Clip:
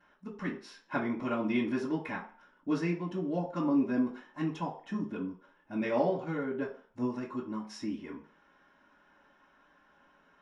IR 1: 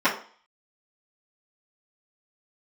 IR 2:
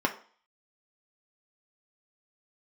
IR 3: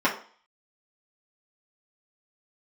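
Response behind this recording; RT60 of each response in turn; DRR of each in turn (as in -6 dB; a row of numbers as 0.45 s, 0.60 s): 1; 0.45 s, 0.45 s, 0.45 s; -14.0 dB, 1.5 dB, -7.0 dB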